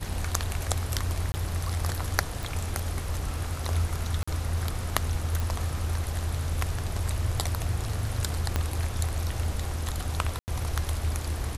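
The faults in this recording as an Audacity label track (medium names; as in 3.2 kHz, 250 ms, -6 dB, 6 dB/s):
1.320000	1.340000	dropout 20 ms
2.430000	2.430000	pop
4.230000	4.280000	dropout 45 ms
5.400000	5.400000	pop
8.560000	8.560000	pop -11 dBFS
10.390000	10.480000	dropout 89 ms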